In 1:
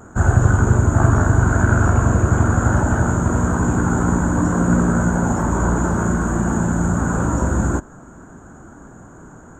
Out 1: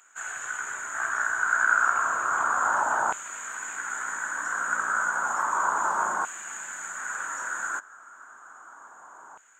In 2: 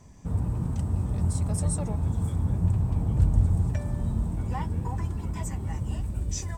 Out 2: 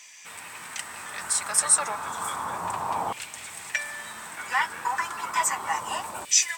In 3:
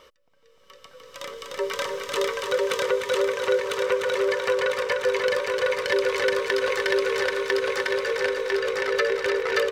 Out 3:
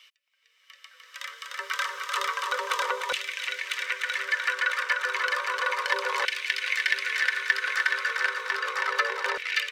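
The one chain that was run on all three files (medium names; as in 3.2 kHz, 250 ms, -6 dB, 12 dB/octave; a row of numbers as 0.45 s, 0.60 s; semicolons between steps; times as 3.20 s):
LFO high-pass saw down 0.32 Hz 900–2500 Hz; normalise loudness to -27 LUFS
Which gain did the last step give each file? -4.0 dB, +15.5 dB, -2.0 dB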